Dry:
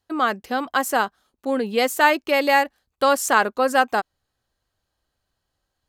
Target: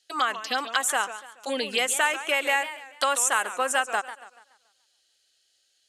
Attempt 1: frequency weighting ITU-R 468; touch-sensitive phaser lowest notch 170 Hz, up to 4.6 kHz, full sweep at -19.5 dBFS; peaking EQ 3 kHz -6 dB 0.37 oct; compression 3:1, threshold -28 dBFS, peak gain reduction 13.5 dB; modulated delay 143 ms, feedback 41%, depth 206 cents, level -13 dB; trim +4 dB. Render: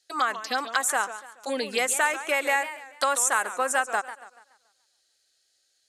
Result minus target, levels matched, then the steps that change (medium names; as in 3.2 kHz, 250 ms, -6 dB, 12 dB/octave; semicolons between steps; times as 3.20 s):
4 kHz band -4.5 dB
change: peaking EQ 3 kHz +3.5 dB 0.37 oct